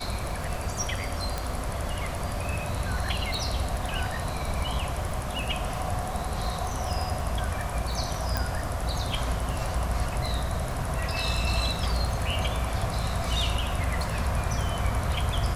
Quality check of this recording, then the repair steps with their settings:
crackle 21/s -33 dBFS
1.38 pop
3.34 pop
8.37 pop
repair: de-click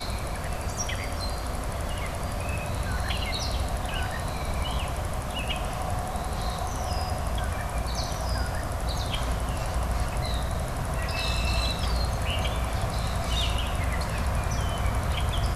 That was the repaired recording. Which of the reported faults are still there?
none

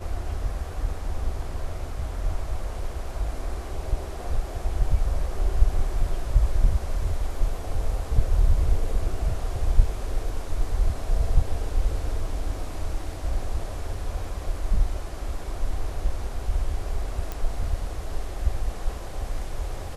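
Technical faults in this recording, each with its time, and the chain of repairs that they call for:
17.32 pop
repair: de-click

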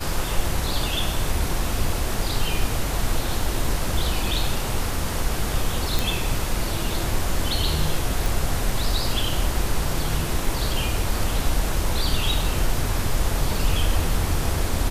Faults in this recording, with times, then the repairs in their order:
5.99 pop
8.26 pop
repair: de-click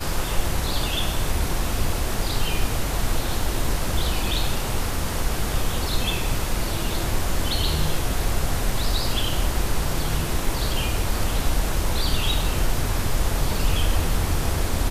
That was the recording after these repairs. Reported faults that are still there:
none

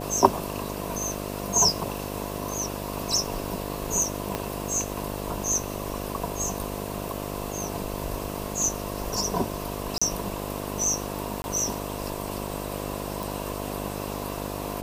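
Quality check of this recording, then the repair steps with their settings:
buzz 50 Hz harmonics 14 -34 dBFS
4.35 pop -12 dBFS
9.98–10.02 gap 35 ms
11.42–11.44 gap 21 ms
13.23 pop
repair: de-click; de-hum 50 Hz, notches 14; interpolate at 9.98, 35 ms; interpolate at 11.42, 21 ms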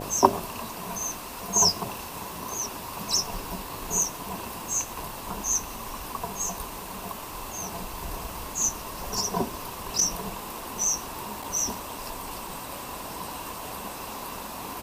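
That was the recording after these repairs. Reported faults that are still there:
4.35 pop

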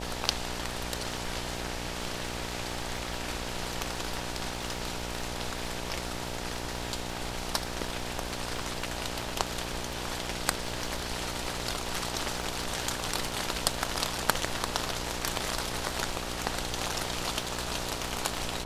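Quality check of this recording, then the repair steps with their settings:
buzz 60 Hz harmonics 16 -39 dBFS
crackle 29/s -38 dBFS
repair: de-click; de-hum 60 Hz, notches 16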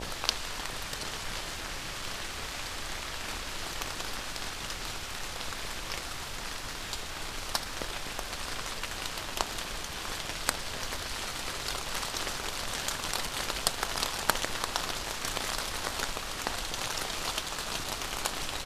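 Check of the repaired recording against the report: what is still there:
none

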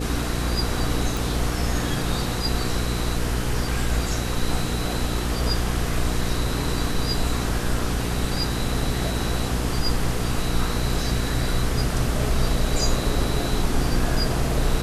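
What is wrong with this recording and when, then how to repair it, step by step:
hum 60 Hz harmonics 8 -27 dBFS
1.17 pop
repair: de-click; de-hum 60 Hz, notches 8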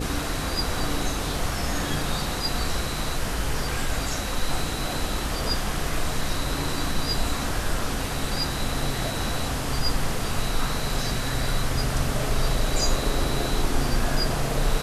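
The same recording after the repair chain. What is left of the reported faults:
none

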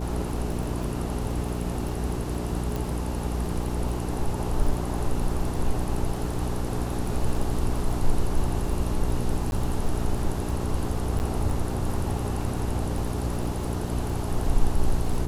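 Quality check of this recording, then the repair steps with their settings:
crackle 30/s -32 dBFS
hum 60 Hz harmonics 7 -30 dBFS
2.76 pop
9.51–9.52 gap 11 ms
11.19–11.2 gap 9.5 ms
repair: de-click; de-hum 60 Hz, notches 7; interpolate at 9.51, 11 ms; interpolate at 11.19, 9.5 ms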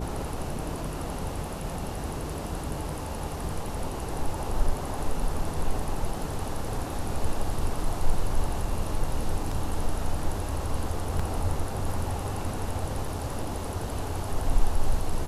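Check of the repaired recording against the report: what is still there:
2.76 pop

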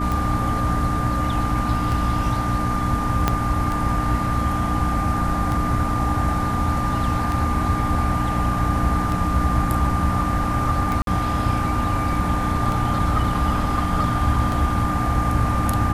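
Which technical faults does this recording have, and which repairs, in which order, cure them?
hum 60 Hz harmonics 5 -27 dBFS
tick 33 1/3 rpm
tone 1200 Hz -25 dBFS
3.28 pop -4 dBFS
11.02–11.07 gap 52 ms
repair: de-click; de-hum 60 Hz, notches 5; notch 1200 Hz, Q 30; interpolate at 11.02, 52 ms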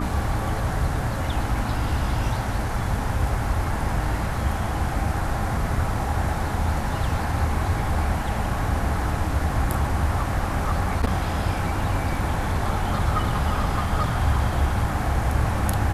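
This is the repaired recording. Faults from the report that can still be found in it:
3.28 pop

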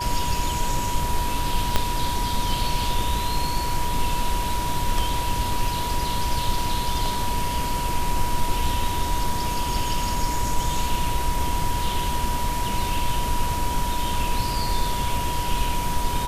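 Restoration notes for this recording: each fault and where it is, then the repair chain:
tone 970 Hz -27 dBFS
1.76 pop -5 dBFS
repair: de-click; notch 970 Hz, Q 30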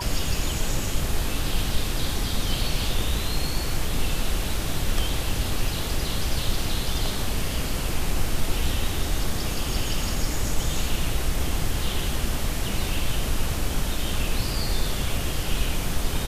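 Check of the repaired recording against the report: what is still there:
1.76 pop

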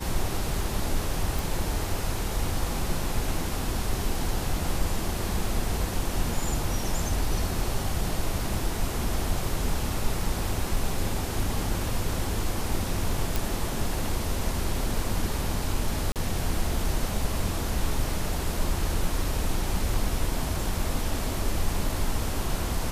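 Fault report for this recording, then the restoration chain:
1.39 pop
13.36 pop
16.12–16.16 gap 38 ms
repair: de-click; interpolate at 16.12, 38 ms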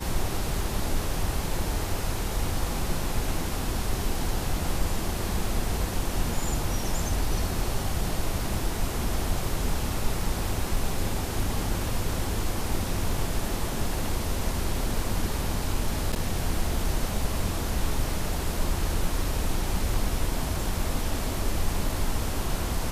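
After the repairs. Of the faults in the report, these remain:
none

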